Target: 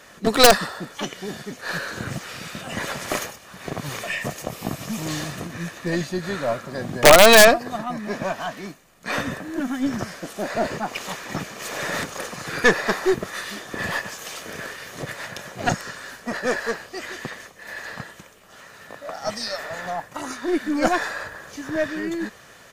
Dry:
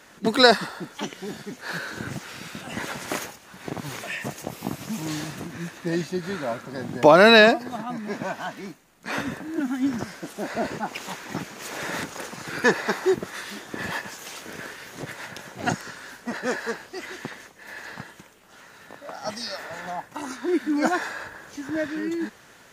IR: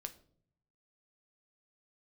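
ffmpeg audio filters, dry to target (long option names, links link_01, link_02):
-af "aecho=1:1:1.7:0.31,aeval=exprs='(mod(1.58*val(0)+1,2)-1)/1.58':channel_layout=same,aeval=exprs='0.668*(cos(1*acos(clip(val(0)/0.668,-1,1)))-cos(1*PI/2))+0.119*(cos(4*acos(clip(val(0)/0.668,-1,1)))-cos(4*PI/2))+0.0299*(cos(5*acos(clip(val(0)/0.668,-1,1)))-cos(5*PI/2))':channel_layout=same,volume=1.5dB"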